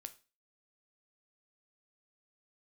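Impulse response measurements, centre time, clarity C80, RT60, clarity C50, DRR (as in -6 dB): 4 ms, 22.0 dB, 0.30 s, 17.0 dB, 9.5 dB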